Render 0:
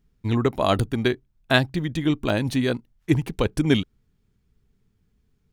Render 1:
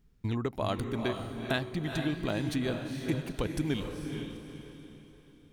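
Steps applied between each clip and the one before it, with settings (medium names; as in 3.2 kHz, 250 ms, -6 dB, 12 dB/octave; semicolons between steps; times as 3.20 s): compression 3:1, threshold -32 dBFS, peak gain reduction 14.5 dB; echo that smears into a reverb 451 ms, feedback 40%, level -5 dB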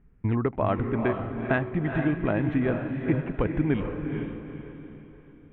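inverse Chebyshev low-pass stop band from 4.4 kHz, stop band 40 dB; trim +6.5 dB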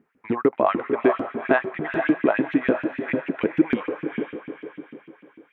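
LFO high-pass saw up 6.7 Hz 210–2900 Hz; trim +3.5 dB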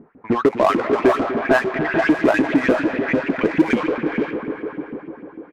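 delay 248 ms -17 dB; power-law waveshaper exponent 0.7; level-controlled noise filter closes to 810 Hz, open at -11 dBFS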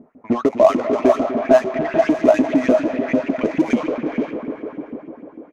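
graphic EQ with 31 bands 250 Hz +8 dB, 630 Hz +12 dB, 1.6 kHz -7 dB, 6.3 kHz +9 dB; trim -4 dB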